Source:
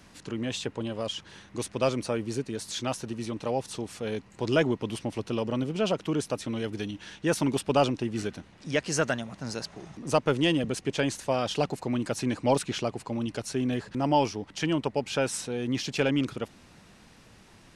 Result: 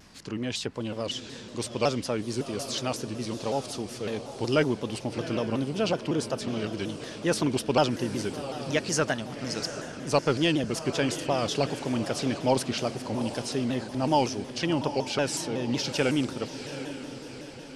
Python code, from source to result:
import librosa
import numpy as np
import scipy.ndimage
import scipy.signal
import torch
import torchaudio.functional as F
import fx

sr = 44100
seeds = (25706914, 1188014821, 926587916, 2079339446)

p1 = fx.peak_eq(x, sr, hz=4900.0, db=6.5, octaves=0.39)
p2 = p1 + fx.echo_diffused(p1, sr, ms=751, feedback_pct=52, wet_db=-10.5, dry=0)
y = fx.vibrato_shape(p2, sr, shape='saw_down', rate_hz=5.4, depth_cents=160.0)